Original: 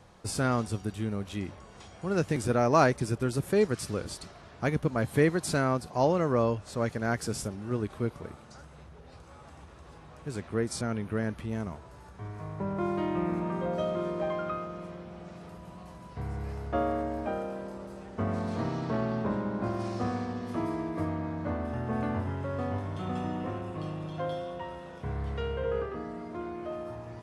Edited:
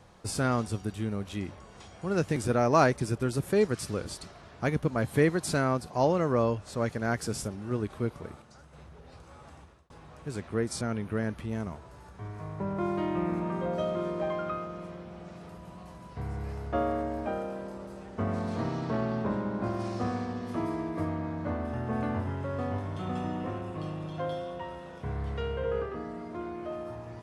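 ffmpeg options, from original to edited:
-filter_complex "[0:a]asplit=4[a][b][c][d];[a]atrim=end=8.422[e];[b]atrim=start=8.418:end=8.732,asetpts=PTS-STARTPTS,volume=-4.5dB[f];[c]atrim=start=8.728:end=9.9,asetpts=PTS-STARTPTS,afade=t=out:st=0.812:d=0.36[g];[d]atrim=start=9.9,asetpts=PTS-STARTPTS,afade=t=in:d=0.004:c=hsin[h];[e][f]acrossfade=d=0.004:c1=hsin:c2=hsin[i];[g][h]concat=n=2:v=0:a=1[j];[i][j]acrossfade=d=0.004:c1=hsin:c2=hsin"

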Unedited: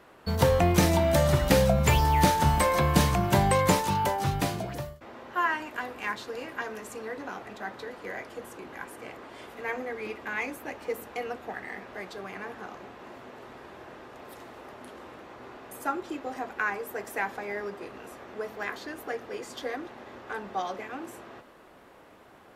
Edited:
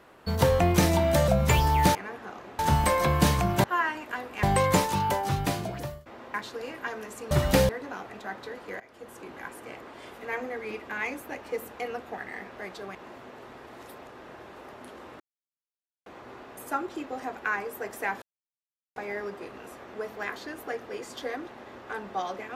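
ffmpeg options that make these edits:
-filter_complex "[0:a]asplit=15[a][b][c][d][e][f][g][h][i][j][k][l][m][n][o];[a]atrim=end=1.282[p];[b]atrim=start=1.658:end=2.332[q];[c]atrim=start=12.308:end=12.952[r];[d]atrim=start=2.328:end=3.382[s];[e]atrim=start=5.288:end=6.082[t];[f]atrim=start=3.378:end=5.292[u];[g]atrim=start=6.078:end=7.052[v];[h]atrim=start=1.278:end=1.662[w];[i]atrim=start=7.048:end=8.16,asetpts=PTS-STARTPTS,afade=t=out:st=1.108:d=0.004:c=hsin:silence=0.112202[x];[j]atrim=start=8.16:end=12.312,asetpts=PTS-STARTPTS,afade=t=in:d=0.45:silence=0.112202[y];[k]atrim=start=12.948:end=13.672[z];[l]atrim=start=13.668:end=14.562,asetpts=PTS-STARTPTS,areverse[aa];[m]atrim=start=14.558:end=15.2,asetpts=PTS-STARTPTS,afade=t=out:st=0.638:d=0.004:c=hsin,apad=pad_dur=0.86[ab];[n]atrim=start=15.2:end=17.36,asetpts=PTS-STARTPTS,afade=t=in:d=0.004:c=hsin,afade=t=out:st=2.156:d=0.004:c=hsin,apad=pad_dur=0.74[ac];[o]atrim=start=17.36,asetpts=PTS-STARTPTS,afade=t=in:d=0.004:c=hsin[ad];[p][q]acrossfade=d=0.004:c1=hsin:c2=hsin[ae];[ae][r]acrossfade=d=0.004:c1=hsin:c2=hsin[af];[af][s]acrossfade=d=0.004:c1=hsin:c2=hsin[ag];[ag][t]acrossfade=d=0.004:c1=hsin:c2=hsin[ah];[ah][u]acrossfade=d=0.004:c1=hsin:c2=hsin[ai];[ai][v]acrossfade=d=0.004:c1=hsin:c2=hsin[aj];[aj][w]acrossfade=d=0.004:c1=hsin:c2=hsin[ak];[x][y]concat=n=2:v=0:a=1[al];[ak][al]acrossfade=d=0.004:c1=hsin:c2=hsin[am];[am][z]acrossfade=d=0.004:c1=hsin:c2=hsin[an];[an][aa]acrossfade=d=0.004:c1=hsin:c2=hsin[ao];[ab][ac][ad]concat=n=3:v=0:a=1[ap];[ao][ap]acrossfade=d=0.004:c1=hsin:c2=hsin"

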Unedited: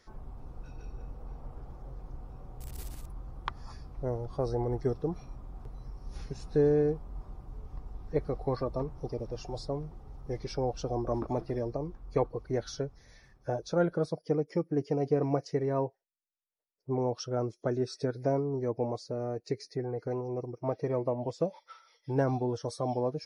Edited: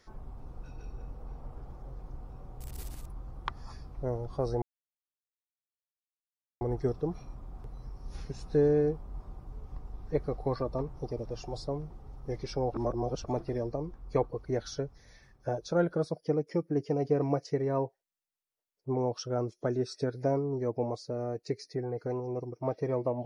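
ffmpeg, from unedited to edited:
-filter_complex "[0:a]asplit=4[a][b][c][d];[a]atrim=end=4.62,asetpts=PTS-STARTPTS,afade=t=out:st=4.616:d=0.004:c=hsin,apad=pad_dur=1.99[e];[b]atrim=start=4.62:end=10.752,asetpts=PTS-STARTPTS,afade=t=in:d=0.004:c=hsin[f];[c]atrim=start=10.748:end=11.252,asetpts=PTS-STARTPTS,areverse[g];[d]atrim=start=11.248[h];[e][f]concat=n=2:v=0:a=1[i];[i][g]acrossfade=d=0.004:c1=hsin:c2=hsin[j];[j][h]acrossfade=d=0.004:c1=hsin:c2=hsin"

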